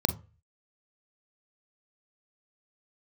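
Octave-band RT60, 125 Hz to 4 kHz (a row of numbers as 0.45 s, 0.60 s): 0.50 s, 0.30 s, 0.35 s, 0.35 s, 0.35 s, 0.20 s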